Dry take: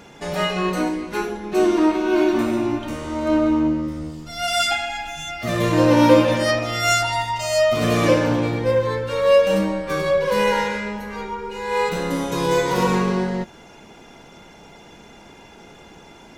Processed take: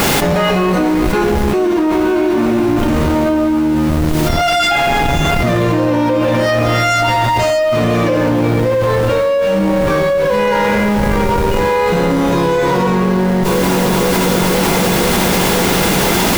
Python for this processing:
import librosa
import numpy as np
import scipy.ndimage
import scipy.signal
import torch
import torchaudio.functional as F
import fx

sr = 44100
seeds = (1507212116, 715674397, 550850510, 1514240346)

p1 = fx.schmitt(x, sr, flips_db=-26.0)
p2 = x + (p1 * 10.0 ** (-7.0 / 20.0))
p3 = fx.dmg_noise_colour(p2, sr, seeds[0], colour='white', level_db=-40.0)
p4 = fx.high_shelf(p3, sr, hz=4200.0, db=-10.0)
p5 = p4 + fx.echo_filtered(p4, sr, ms=498, feedback_pct=77, hz=2000.0, wet_db=-21.5, dry=0)
p6 = fx.env_flatten(p5, sr, amount_pct=100)
y = p6 * 10.0 ** (-5.0 / 20.0)